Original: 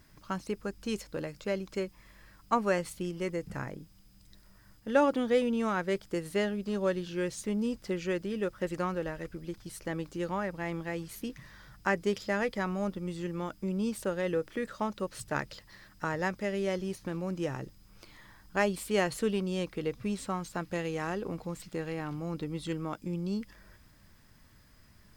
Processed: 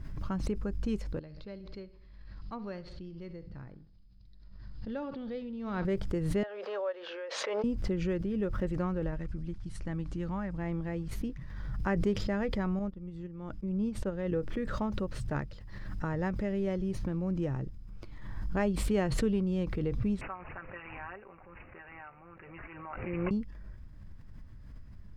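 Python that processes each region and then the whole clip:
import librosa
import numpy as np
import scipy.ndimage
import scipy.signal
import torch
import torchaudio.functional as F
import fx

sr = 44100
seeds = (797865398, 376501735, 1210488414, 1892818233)

y = fx.chain(x, sr, fx.ladder_lowpass(hz=4800.0, resonance_pct=70),
    fx.echo_feedback(ms=65, feedback_pct=47, wet_db=-17), at=(1.19, 5.85))
y = fx.chain(y, sr, fx.ellip_highpass(hz=510.0, order=4, stop_db=80),
    fx.air_absorb(metres=230.0), at=(6.43, 7.64))
y = fx.chain(y, sr, fx.peak_eq(hz=450.0, db=-8.0, octaves=0.91),
    fx.resample_bad(factor=2, down='none', up='filtered'), at=(9.16, 10.57))
y = fx.chain(y, sr, fx.high_shelf(hz=9800.0, db=-8.5),
    fx.upward_expand(threshold_db=-50.0, expansion=2.5), at=(12.79, 14.32))
y = fx.chain(y, sr, fx.highpass(hz=1100.0, slope=12),
    fx.comb(ms=5.2, depth=0.9),
    fx.resample_bad(factor=8, down='none', up='filtered'), at=(20.21, 23.31))
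y = fx.riaa(y, sr, side='playback')
y = fx.pre_swell(y, sr, db_per_s=32.0)
y = y * librosa.db_to_amplitude(-5.5)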